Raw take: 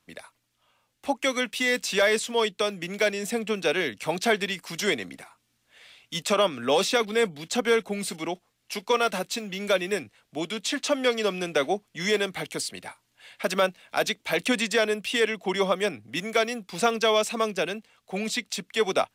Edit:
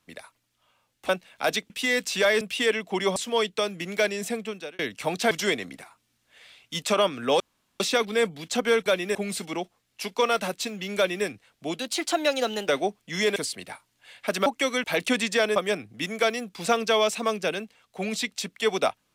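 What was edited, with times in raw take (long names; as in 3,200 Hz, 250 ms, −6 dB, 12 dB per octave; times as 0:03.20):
0:01.09–0:01.47: swap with 0:13.62–0:14.23
0:03.24–0:03.81: fade out
0:04.33–0:04.71: remove
0:06.80: splice in room tone 0.40 s
0:09.68–0:09.97: duplicate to 0:07.86
0:10.50–0:11.55: play speed 118%
0:12.23–0:12.52: remove
0:14.95–0:15.70: move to 0:02.18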